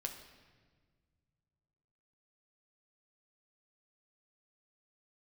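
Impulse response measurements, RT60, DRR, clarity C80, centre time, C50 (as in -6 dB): 1.5 s, 2.5 dB, 9.5 dB, 25 ms, 8.0 dB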